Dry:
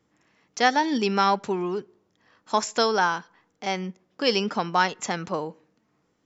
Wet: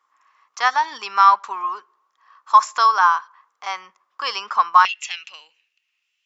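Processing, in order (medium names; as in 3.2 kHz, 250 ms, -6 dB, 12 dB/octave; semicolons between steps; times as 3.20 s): resonant high-pass 1.1 kHz, resonance Q 9.5, from 4.85 s 2.7 kHz; trim -1.5 dB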